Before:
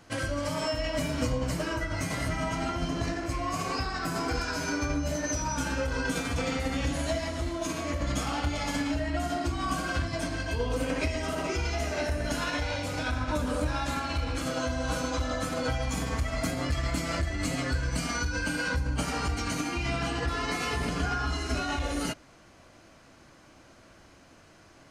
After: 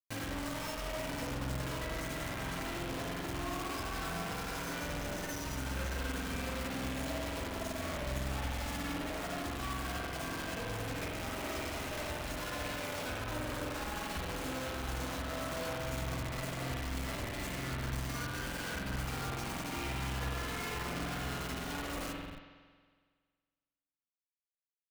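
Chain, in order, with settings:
0:13.65–0:14.17: lower of the sound and its delayed copy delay 4.7 ms
downward compressor 20 to 1, threshold −35 dBFS, peak gain reduction 12.5 dB
on a send: single-tap delay 558 ms −13 dB
on the sum: bit reduction 6 bits
spring reverb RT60 1.7 s, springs 46 ms, chirp 65 ms, DRR −2.5 dB
in parallel at −8 dB: comparator with hysteresis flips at −37.5 dBFS
on the sum: level −6.5 dB

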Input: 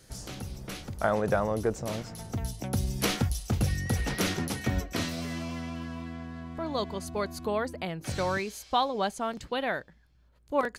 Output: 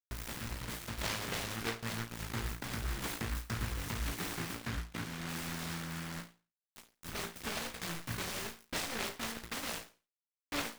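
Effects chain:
tilt shelving filter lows +3.5 dB
downward compressor 3 to 1, threshold −35 dBFS, peak gain reduction 12.5 dB
0:06.20–0:07.03: stiff-string resonator 120 Hz, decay 0.26 s, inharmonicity 0.002
bit-depth reduction 6 bits, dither none
0:04.53–0:05.29: head-to-tape spacing loss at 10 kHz 23 dB
flutter between parallel walls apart 3 metres, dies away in 0.33 s
short delay modulated by noise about 1,400 Hz, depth 0.42 ms
level −6 dB

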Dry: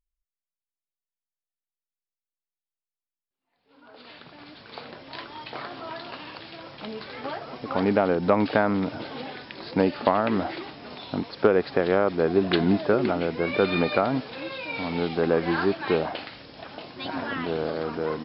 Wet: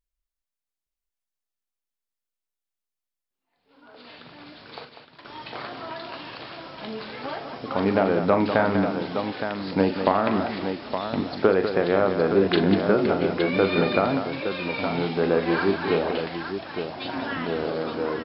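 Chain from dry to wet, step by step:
0:04.85–0:05.25: noise gate −34 dBFS, range −20 dB
multi-tap delay 41/195/866 ms −8.5/−8.5/−7.5 dB

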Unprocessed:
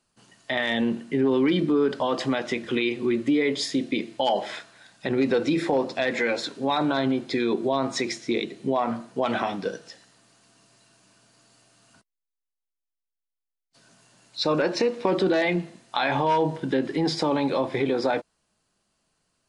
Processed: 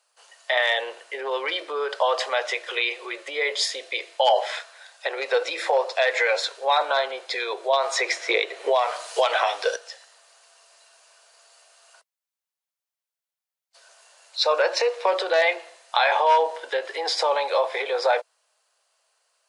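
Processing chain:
Butterworth high-pass 490 Hz 48 dB per octave
0:07.73–0:09.76: multiband upward and downward compressor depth 100%
level +5 dB

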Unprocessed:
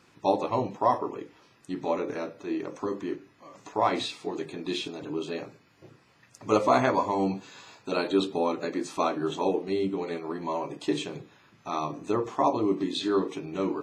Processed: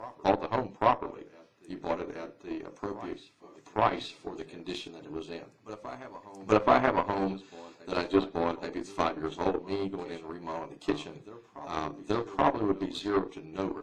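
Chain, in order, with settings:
backwards echo 829 ms −13 dB
harmonic generator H 6 −27 dB, 7 −21 dB, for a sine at −8.5 dBFS
treble cut that deepens with the level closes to 3,000 Hz, closed at −21.5 dBFS

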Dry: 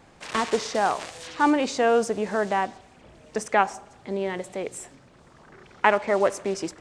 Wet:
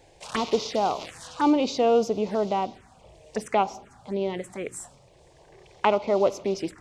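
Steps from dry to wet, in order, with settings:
phaser swept by the level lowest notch 200 Hz, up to 1,700 Hz, full sweep at −23.5 dBFS
level +1.5 dB

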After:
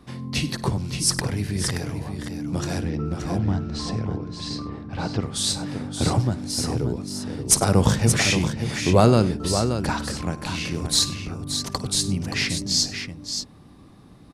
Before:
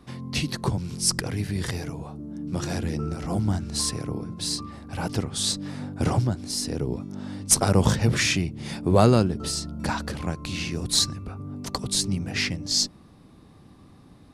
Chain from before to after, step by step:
0:02.81–0:05.23: high-frequency loss of the air 160 metres
multi-tap delay 54/99/576 ms −17/−19.5/−7.5 dB
level +1.5 dB

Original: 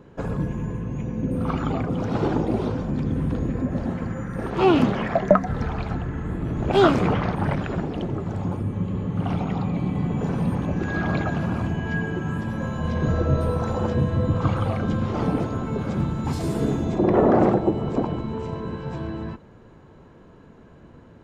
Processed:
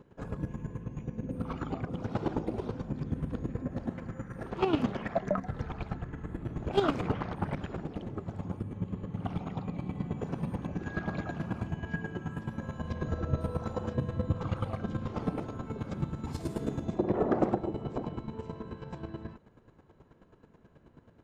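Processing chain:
square-wave tremolo 9.3 Hz, depth 65%, duty 20%
level −5.5 dB

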